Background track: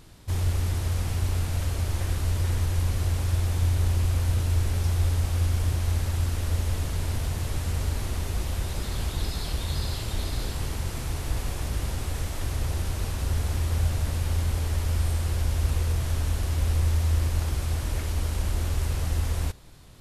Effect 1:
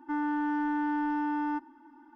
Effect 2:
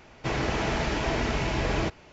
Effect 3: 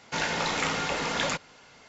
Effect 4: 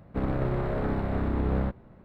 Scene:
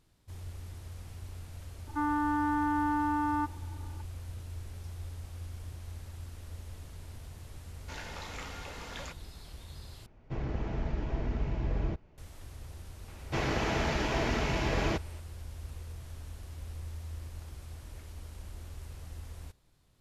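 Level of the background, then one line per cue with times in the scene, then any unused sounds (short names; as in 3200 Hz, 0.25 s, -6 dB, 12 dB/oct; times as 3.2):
background track -18 dB
1.87 add 1 -1.5 dB + small resonant body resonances 770/1200 Hz, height 11 dB, ringing for 25 ms
7.76 add 3 -15.5 dB
10.06 replace with 2 -15 dB + tilt -3.5 dB/oct
13.08 add 2 -3 dB
not used: 4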